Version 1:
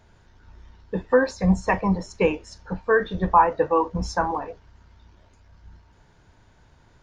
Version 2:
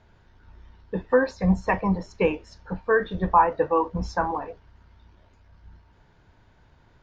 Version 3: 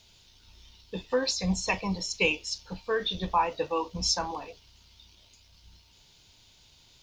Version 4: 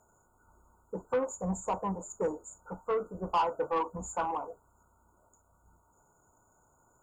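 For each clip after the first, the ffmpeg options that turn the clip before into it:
ffmpeg -i in.wav -af "lowpass=4500,volume=-1.5dB" out.wav
ffmpeg -i in.wav -af "aexciter=amount=14.5:drive=5.3:freq=2600,volume=-7.5dB" out.wav
ffmpeg -i in.wav -filter_complex "[0:a]afftfilt=real='re*(1-between(b*sr/4096,1500,6700))':imag='im*(1-between(b*sr/4096,1500,6700))':win_size=4096:overlap=0.75,asplit=2[link_01][link_02];[link_02]highpass=frequency=720:poles=1,volume=17dB,asoftclip=type=tanh:threshold=-14.5dB[link_03];[link_01][link_03]amix=inputs=2:normalize=0,lowpass=frequency=2700:poles=1,volume=-6dB,volume=-5.5dB" out.wav

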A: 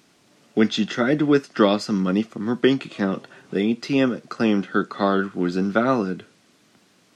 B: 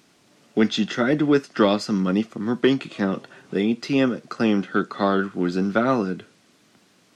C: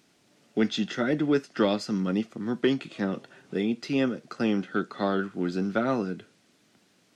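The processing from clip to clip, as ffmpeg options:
ffmpeg -i in.wav -af "asoftclip=type=tanh:threshold=-5dB" out.wav
ffmpeg -i in.wav -af "equalizer=frequency=1100:width_type=o:width=0.39:gain=-4,volume=-5.5dB" out.wav

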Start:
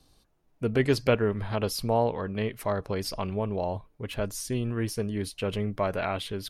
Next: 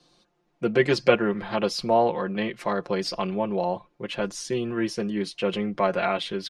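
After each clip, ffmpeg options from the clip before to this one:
ffmpeg -i in.wav -filter_complex "[0:a]lowpass=11000,acrossover=split=160 7400:gain=0.112 1 0.0794[link_01][link_02][link_03];[link_01][link_02][link_03]amix=inputs=3:normalize=0,aecho=1:1:5.7:0.74,volume=3.5dB" out.wav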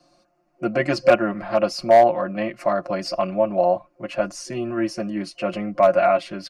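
ffmpeg -i in.wav -af "superequalizer=6b=1.58:7b=0.316:8b=3.16:10b=1.58:13b=0.316,volume=6.5dB,asoftclip=hard,volume=-6.5dB" out.wav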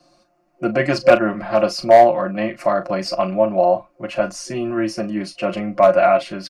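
ffmpeg -i in.wav -filter_complex "[0:a]asplit=2[link_01][link_02];[link_02]adelay=37,volume=-11dB[link_03];[link_01][link_03]amix=inputs=2:normalize=0,volume=3dB" out.wav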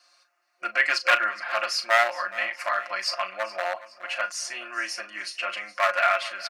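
ffmpeg -i in.wav -af "aeval=exprs='clip(val(0),-1,0.316)':channel_layout=same,highpass=frequency=1600:width_type=q:width=1.6,aecho=1:1:418|836|1254:0.133|0.0547|0.0224" out.wav

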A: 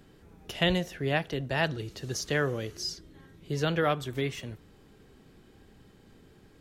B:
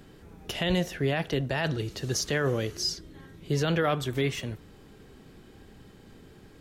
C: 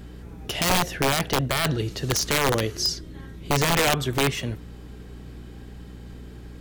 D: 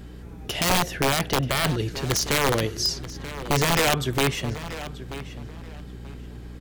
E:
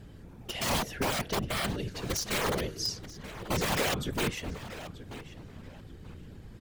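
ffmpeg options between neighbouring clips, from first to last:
ffmpeg -i in.wav -af "alimiter=limit=-22dB:level=0:latency=1:release=11,volume=5dB" out.wav
ffmpeg -i in.wav -af "aeval=exprs='val(0)+0.00562*(sin(2*PI*60*n/s)+sin(2*PI*2*60*n/s)/2+sin(2*PI*3*60*n/s)/3+sin(2*PI*4*60*n/s)/4+sin(2*PI*5*60*n/s)/5)':channel_layout=same,aeval=exprs='(mod(8.91*val(0)+1,2)-1)/8.91':channel_layout=same,volume=5dB" out.wav
ffmpeg -i in.wav -filter_complex "[0:a]asplit=2[link_01][link_02];[link_02]adelay=933,lowpass=frequency=4900:poles=1,volume=-13.5dB,asplit=2[link_03][link_04];[link_04]adelay=933,lowpass=frequency=4900:poles=1,volume=0.24,asplit=2[link_05][link_06];[link_06]adelay=933,lowpass=frequency=4900:poles=1,volume=0.24[link_07];[link_01][link_03][link_05][link_07]amix=inputs=4:normalize=0" out.wav
ffmpeg -i in.wav -af "afftfilt=real='hypot(re,im)*cos(2*PI*random(0))':imag='hypot(re,im)*sin(2*PI*random(1))':win_size=512:overlap=0.75,volume=-2dB" out.wav

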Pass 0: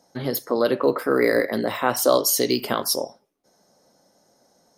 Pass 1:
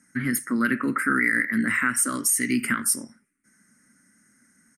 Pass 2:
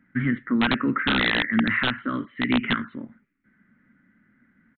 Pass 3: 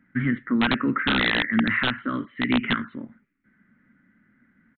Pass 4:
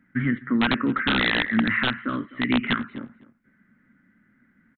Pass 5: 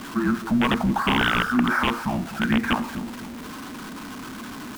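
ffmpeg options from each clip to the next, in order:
ffmpeg -i in.wav -af "firequalizer=gain_entry='entry(160,0);entry(230,8);entry(450,-19);entry(760,-24);entry(1400,9);entry(2000,13);entry(3600,-18);entry(8900,14);entry(14000,-11)':delay=0.05:min_phase=1,alimiter=limit=-10.5dB:level=0:latency=1:release=293" out.wav
ffmpeg -i in.wav -af "lowshelf=frequency=140:gain=9.5,aresample=8000,aeval=exprs='(mod(4.47*val(0)+1,2)-1)/4.47':channel_layout=same,aresample=44100" out.wav
ffmpeg -i in.wav -af anull out.wav
ffmpeg -i in.wav -filter_complex "[0:a]asplit=2[link_01][link_02];[link_02]adelay=253,lowpass=frequency=2100:poles=1,volume=-18.5dB,asplit=2[link_03][link_04];[link_04]adelay=253,lowpass=frequency=2100:poles=1,volume=0.18[link_05];[link_01][link_03][link_05]amix=inputs=3:normalize=0" out.wav
ffmpeg -i in.wav -af "aeval=exprs='val(0)+0.5*0.0299*sgn(val(0))':channel_layout=same,afreqshift=-470" out.wav

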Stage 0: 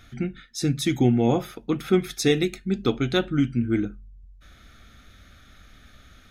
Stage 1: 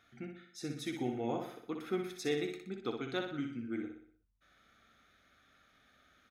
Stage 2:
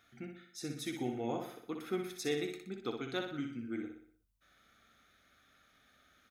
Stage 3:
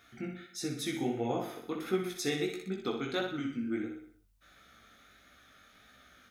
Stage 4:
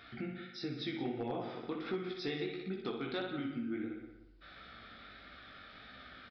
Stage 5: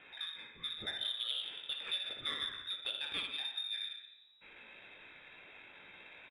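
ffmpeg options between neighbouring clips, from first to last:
ffmpeg -i in.wav -filter_complex "[0:a]highpass=frequency=730:poles=1,highshelf=frequency=2200:gain=-11,asplit=2[link_01][link_02];[link_02]aecho=0:1:61|122|183|244|305|366:0.501|0.241|0.115|0.0554|0.0266|0.0128[link_03];[link_01][link_03]amix=inputs=2:normalize=0,volume=-7.5dB" out.wav
ffmpeg -i in.wav -af "highshelf=frequency=6600:gain=7.5,volume=-1dB" out.wav
ffmpeg -i in.wav -filter_complex "[0:a]asplit=2[link_01][link_02];[link_02]acompressor=threshold=-45dB:ratio=6,volume=-2dB[link_03];[link_01][link_03]amix=inputs=2:normalize=0,flanger=delay=15.5:depth=6.1:speed=1.5,volume=5.5dB" out.wav
ffmpeg -i in.wav -filter_complex "[0:a]acompressor=threshold=-51dB:ratio=2,asplit=2[link_01][link_02];[link_02]adelay=175,lowpass=frequency=2400:poles=1,volume=-10.5dB,asplit=2[link_03][link_04];[link_04]adelay=175,lowpass=frequency=2400:poles=1,volume=0.3,asplit=2[link_05][link_06];[link_06]adelay=175,lowpass=frequency=2400:poles=1,volume=0.3[link_07];[link_01][link_03][link_05][link_07]amix=inputs=4:normalize=0,aresample=11025,volume=36dB,asoftclip=hard,volume=-36dB,aresample=44100,volume=6.5dB" out.wav
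ffmpeg -i in.wav -af "aecho=1:1:85:0.2,lowpass=frequency=3300:width_type=q:width=0.5098,lowpass=frequency=3300:width_type=q:width=0.6013,lowpass=frequency=3300:width_type=q:width=0.9,lowpass=frequency=3300:width_type=q:width=2.563,afreqshift=-3900,adynamicsmooth=sensitivity=3.5:basefreq=2800,volume=2.5dB" out.wav

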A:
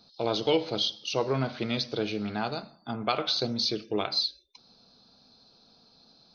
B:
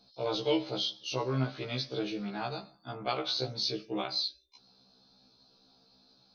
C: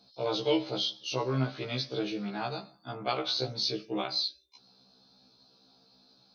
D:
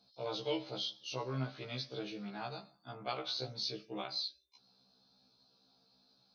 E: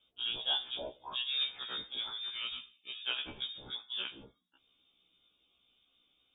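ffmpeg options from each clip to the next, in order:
ffmpeg -i in.wav -af "afftfilt=real='re*1.73*eq(mod(b,3),0)':imag='im*1.73*eq(mod(b,3),0)':win_size=2048:overlap=0.75,volume=-2dB" out.wav
ffmpeg -i in.wav -af "highpass=74,volume=1.5dB" out.wav
ffmpeg -i in.wav -af "equalizer=frequency=340:width_type=o:width=0.72:gain=-3.5,volume=-7.5dB" out.wav
ffmpeg -i in.wav -af "lowpass=frequency=3200:width_type=q:width=0.5098,lowpass=frequency=3200:width_type=q:width=0.6013,lowpass=frequency=3200:width_type=q:width=0.9,lowpass=frequency=3200:width_type=q:width=2.563,afreqshift=-3800,volume=3dB" out.wav

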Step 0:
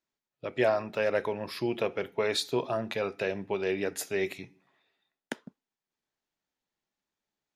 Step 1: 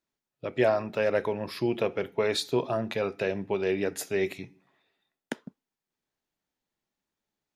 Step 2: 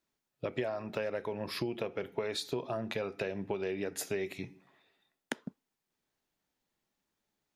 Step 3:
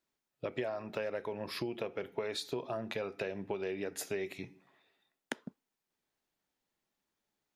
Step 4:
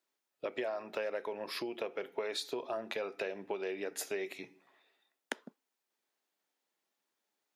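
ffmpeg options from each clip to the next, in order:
ffmpeg -i in.wav -af "lowshelf=frequency=480:gain=4.5" out.wav
ffmpeg -i in.wav -af "acompressor=threshold=-34dB:ratio=10,volume=2.5dB" out.wav
ffmpeg -i in.wav -af "bass=frequency=250:gain=-3,treble=frequency=4000:gain=-1,volume=-1.5dB" out.wav
ffmpeg -i in.wav -af "highpass=330,volume=1dB" out.wav

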